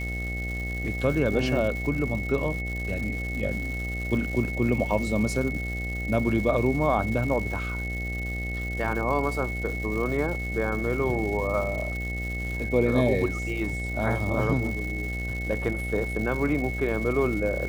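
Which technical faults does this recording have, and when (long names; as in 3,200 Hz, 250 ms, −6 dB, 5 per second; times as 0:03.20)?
mains buzz 60 Hz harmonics 13 −32 dBFS
surface crackle 330 per second −34 dBFS
whistle 2,200 Hz −33 dBFS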